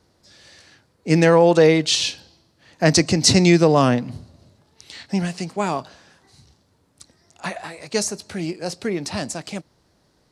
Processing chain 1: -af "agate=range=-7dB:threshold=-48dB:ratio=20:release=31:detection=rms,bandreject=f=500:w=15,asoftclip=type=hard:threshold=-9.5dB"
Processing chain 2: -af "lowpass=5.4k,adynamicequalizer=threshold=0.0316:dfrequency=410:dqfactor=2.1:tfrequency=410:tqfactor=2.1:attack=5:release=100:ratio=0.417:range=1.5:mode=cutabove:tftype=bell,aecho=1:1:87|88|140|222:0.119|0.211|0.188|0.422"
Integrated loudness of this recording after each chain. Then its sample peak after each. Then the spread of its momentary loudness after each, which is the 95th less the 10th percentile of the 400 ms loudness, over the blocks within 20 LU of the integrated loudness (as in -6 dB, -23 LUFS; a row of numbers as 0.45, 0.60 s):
-20.5, -19.0 LUFS; -9.5, -1.5 dBFS; 18, 18 LU